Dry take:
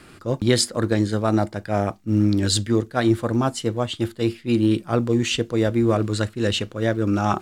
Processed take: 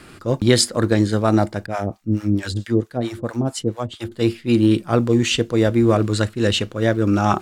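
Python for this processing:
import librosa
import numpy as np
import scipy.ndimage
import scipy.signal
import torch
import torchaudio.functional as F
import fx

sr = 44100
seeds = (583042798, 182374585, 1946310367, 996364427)

y = fx.harmonic_tremolo(x, sr, hz=4.5, depth_pct=100, crossover_hz=640.0, at=(1.66, 4.12))
y = y * librosa.db_to_amplitude(3.5)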